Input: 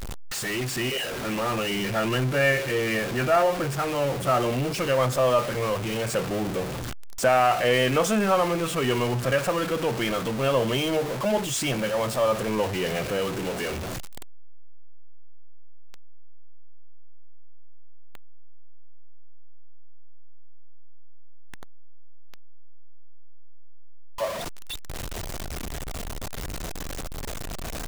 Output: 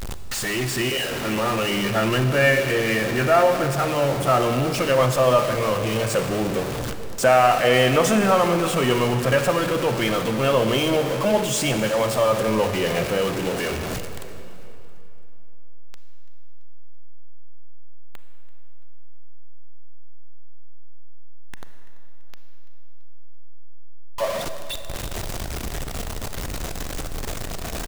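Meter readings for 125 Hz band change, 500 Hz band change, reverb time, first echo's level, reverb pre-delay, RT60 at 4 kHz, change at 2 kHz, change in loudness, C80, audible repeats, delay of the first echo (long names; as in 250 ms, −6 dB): +4.5 dB, +4.5 dB, 3.0 s, −21.0 dB, 30 ms, 2.3 s, +4.0 dB, +4.0 dB, 9.0 dB, 3, 336 ms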